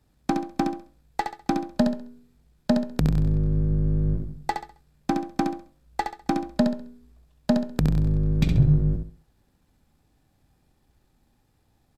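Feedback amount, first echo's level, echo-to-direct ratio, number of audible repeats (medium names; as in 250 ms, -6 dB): 30%, -6.0 dB, -5.5 dB, 3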